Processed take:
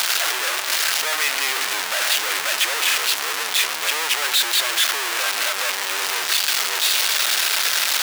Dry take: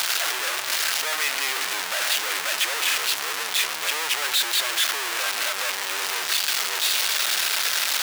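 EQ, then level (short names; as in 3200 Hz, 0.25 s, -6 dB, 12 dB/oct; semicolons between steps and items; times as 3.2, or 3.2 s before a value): HPF 160 Hz 12 dB/oct; +3.5 dB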